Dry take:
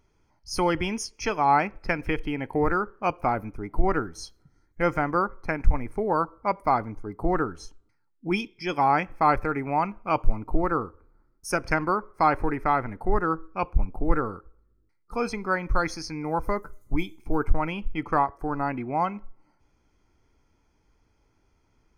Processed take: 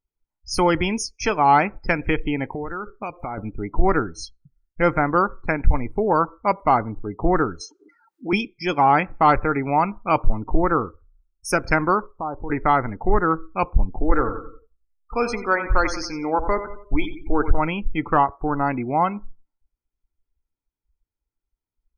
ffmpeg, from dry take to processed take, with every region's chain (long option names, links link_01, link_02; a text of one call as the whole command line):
ffmpeg -i in.wav -filter_complex "[0:a]asettb=1/sr,asplit=3[link_01][link_02][link_03];[link_01]atrim=end=2.444[link_04];[link_02]atrim=start=2.44:end=3.38,asetpts=PTS-STARTPTS,afade=type=in:duration=0.004:curve=qsin,afade=type=out:start_time=0.936:duration=0.004:curve=qsin,highshelf=frequency=3900:gain=10.5,acompressor=threshold=-31dB:ratio=10:attack=3.2:release=140:knee=1:detection=peak[link_05];[link_03]atrim=start=3.376[link_06];[link_04][link_05]acrossfade=duration=0.004:curve1=hsin:curve2=qsin[link_07];[link_07][link_06]acrossfade=duration=0.004:curve1=qsin:curve2=hsin,asettb=1/sr,asplit=3[link_08][link_09][link_10];[link_08]atrim=end=7.614[link_11];[link_09]atrim=start=7.61:end=8.33,asetpts=PTS-STARTPTS,afade=type=in:duration=0.004:curve=qsin,afade=type=out:start_time=0.716:duration=0.004:curve=qsin,highpass=320,acompressor=mode=upward:threshold=-32dB:ratio=2.5:attack=3.2:release=140:knee=2.83:detection=peak[link_12];[link_10]atrim=start=8.326[link_13];[link_11][link_12]acrossfade=duration=0.004:curve1=hsin:curve2=qsin[link_14];[link_14][link_13]acrossfade=duration=0.004:curve1=qsin:curve2=hsin,asettb=1/sr,asplit=3[link_15][link_16][link_17];[link_15]atrim=end=12.064[link_18];[link_16]atrim=start=12.06:end=12.5,asetpts=PTS-STARTPTS,afade=type=in:duration=0.004:curve=qsin,afade=type=out:start_time=0.436:duration=0.004:curve=qsin,lowpass=frequency=1100:width=0.5412,lowpass=frequency=1100:width=1.3066,acompressor=threshold=-51dB:ratio=1.5:attack=3.2:release=140:knee=1:detection=peak[link_19];[link_17]atrim=start=12.496[link_20];[link_18][link_19]acrossfade=duration=0.004:curve1=hsin:curve2=qsin[link_21];[link_21][link_20]acrossfade=duration=0.004:curve1=qsin:curve2=hsin,asettb=1/sr,asplit=3[link_22][link_23][link_24];[link_22]atrim=end=13.984[link_25];[link_23]atrim=start=13.98:end=17.58,asetpts=PTS-STARTPTS,afade=type=in:duration=0.004:curve=qsin,afade=type=out:start_time=3.596:duration=0.004:curve=qsin,equalizer=frequency=170:width_type=o:width=0.43:gain=-14,aecho=1:1:90|180|270|360|450:0.266|0.13|0.0639|0.0313|0.0153,atrim=end_sample=158760[link_26];[link_24]atrim=start=17.576[link_27];[link_25][link_26]acrossfade=duration=0.004:curve1=hsin:curve2=qsin[link_28];[link_28][link_27]acrossfade=duration=0.004:curve1=qsin:curve2=hsin,acontrast=90,afftdn=noise_reduction=32:noise_floor=-36,volume=-1.5dB" out.wav